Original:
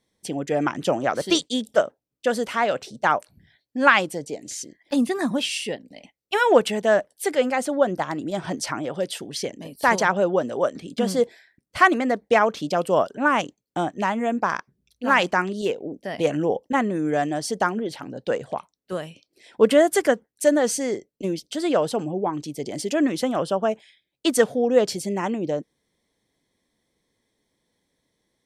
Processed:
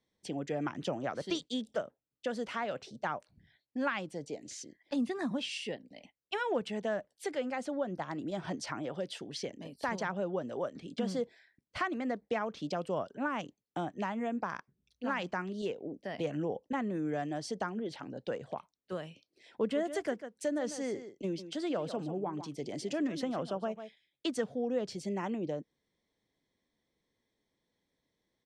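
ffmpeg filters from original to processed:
-filter_complex "[0:a]asplit=3[a][b][c];[a]afade=t=out:st=19.74:d=0.02[d];[b]aecho=1:1:146:0.211,afade=t=in:st=19.74:d=0.02,afade=t=out:st=24.31:d=0.02[e];[c]afade=t=in:st=24.31:d=0.02[f];[d][e][f]amix=inputs=3:normalize=0,acrossover=split=220[g][h];[h]acompressor=threshold=-27dB:ratio=2.5[i];[g][i]amix=inputs=2:normalize=0,lowpass=6k,volume=-8dB"

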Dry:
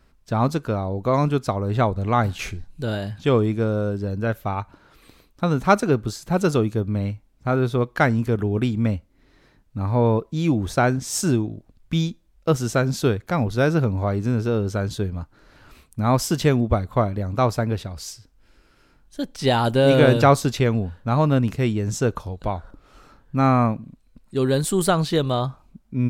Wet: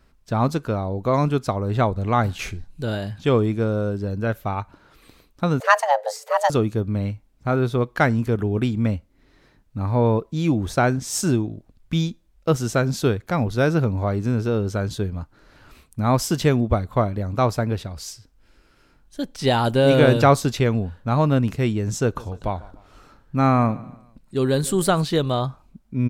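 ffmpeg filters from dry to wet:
-filter_complex "[0:a]asettb=1/sr,asplit=3[a][b][c];[a]atrim=end=5.604[d];[b]atrim=start=5.6:end=6.5,asetpts=PTS-STARTPTS,afade=t=in:d=0.004:c=qsin,afade=t=out:st=0.896:d=0.004:c=qsin,afreqshift=420[e];[c]atrim=start=6.496[f];[d][e]acrossfade=d=0.004:c1=hsin:c2=qsin[g];[g][f]acrossfade=d=0.004:c1=qsin:c2=hsin,asplit=3[h][i][j];[h]afade=t=out:st=22.15:d=0.02[k];[i]aecho=1:1:148|296|444:0.0944|0.0378|0.0151,afade=t=in:st=22.15:d=0.02,afade=t=out:st=25.02:d=0.02[l];[j]afade=t=in:st=25.02:d=0.02[m];[k][l][m]amix=inputs=3:normalize=0"

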